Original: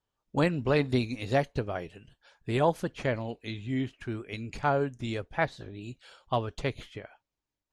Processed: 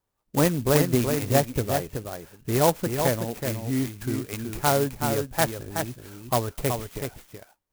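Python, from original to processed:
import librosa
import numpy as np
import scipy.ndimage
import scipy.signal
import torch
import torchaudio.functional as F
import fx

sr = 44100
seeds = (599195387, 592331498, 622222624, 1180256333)

y = x + 10.0 ** (-6.0 / 20.0) * np.pad(x, (int(375 * sr / 1000.0), 0))[:len(x)]
y = fx.clock_jitter(y, sr, seeds[0], jitter_ms=0.088)
y = y * librosa.db_to_amplitude(4.5)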